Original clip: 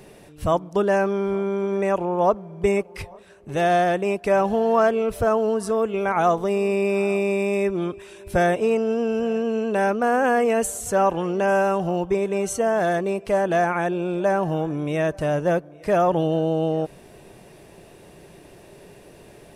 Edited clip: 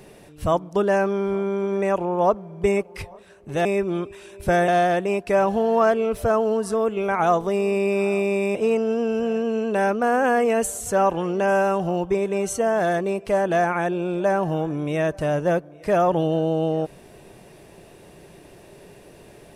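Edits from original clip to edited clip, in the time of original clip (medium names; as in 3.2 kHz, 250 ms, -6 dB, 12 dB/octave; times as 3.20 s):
7.52–8.55 s: move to 3.65 s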